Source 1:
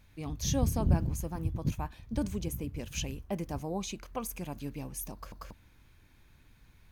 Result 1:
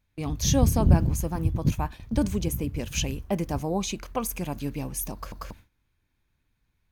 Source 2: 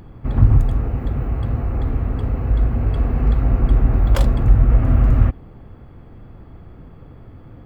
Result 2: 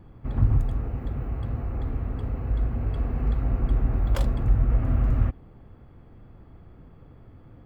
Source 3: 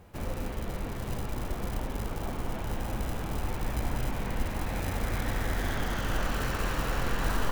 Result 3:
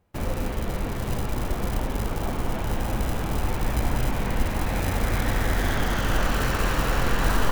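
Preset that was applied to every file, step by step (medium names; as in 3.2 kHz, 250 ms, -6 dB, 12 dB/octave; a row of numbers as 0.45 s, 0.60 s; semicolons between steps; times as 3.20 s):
gate with hold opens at -38 dBFS; normalise loudness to -27 LUFS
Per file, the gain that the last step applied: +7.5 dB, -8.0 dB, +6.5 dB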